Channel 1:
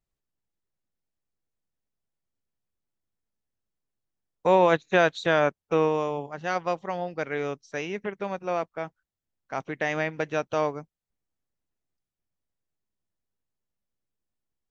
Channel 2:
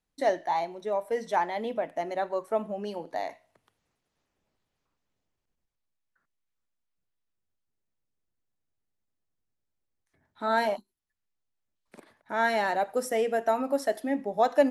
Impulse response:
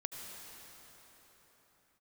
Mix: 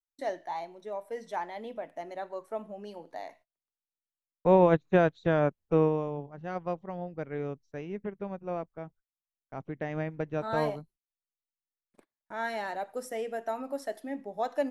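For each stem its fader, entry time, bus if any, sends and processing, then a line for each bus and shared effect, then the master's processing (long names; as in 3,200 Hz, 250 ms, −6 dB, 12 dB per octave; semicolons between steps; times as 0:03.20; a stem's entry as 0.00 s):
−4.5 dB, 0.00 s, no send, spectral tilt −4 dB per octave; expander for the loud parts 1.5 to 1, over −30 dBFS
−8.0 dB, 0.00 s, no send, no processing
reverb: not used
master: noise gate −57 dBFS, range −29 dB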